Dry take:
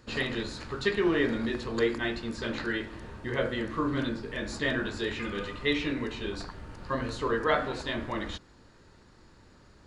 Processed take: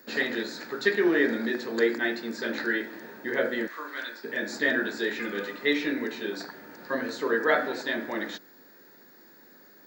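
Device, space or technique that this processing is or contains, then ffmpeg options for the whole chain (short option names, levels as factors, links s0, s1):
old television with a line whistle: -filter_complex "[0:a]highpass=f=220:w=0.5412,highpass=f=220:w=1.3066,equalizer=f=1100:t=q:w=4:g=-9,equalizer=f=1700:t=q:w=4:g=6,equalizer=f=2900:t=q:w=4:g=-9,lowpass=f=7700:w=0.5412,lowpass=f=7700:w=1.3066,aeval=exprs='val(0)+0.00141*sin(2*PI*15625*n/s)':c=same,asplit=3[s0][s1][s2];[s0]afade=t=out:st=3.67:d=0.02[s3];[s1]highpass=940,afade=t=in:st=3.67:d=0.02,afade=t=out:st=4.23:d=0.02[s4];[s2]afade=t=in:st=4.23:d=0.02[s5];[s3][s4][s5]amix=inputs=3:normalize=0,volume=1.41"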